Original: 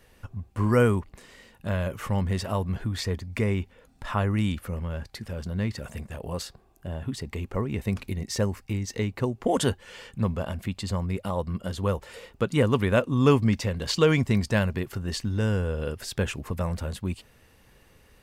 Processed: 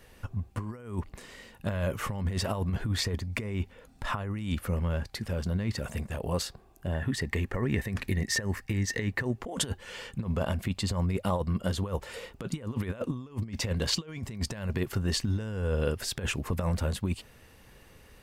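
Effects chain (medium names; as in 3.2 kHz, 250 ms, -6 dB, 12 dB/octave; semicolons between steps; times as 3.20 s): compressor with a negative ratio -28 dBFS, ratio -0.5; 6.93–9.38 s: peaking EQ 1.8 kHz +14.5 dB 0.26 oct; trim -1 dB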